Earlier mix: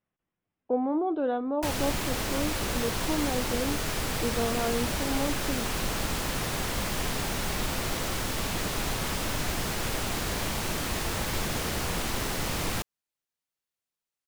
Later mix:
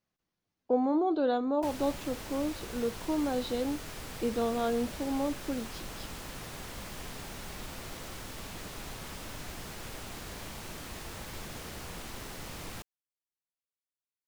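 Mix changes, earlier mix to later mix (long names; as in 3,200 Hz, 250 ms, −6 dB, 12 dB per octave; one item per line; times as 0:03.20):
speech: remove Savitzky-Golay smoothing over 25 samples
background −12.0 dB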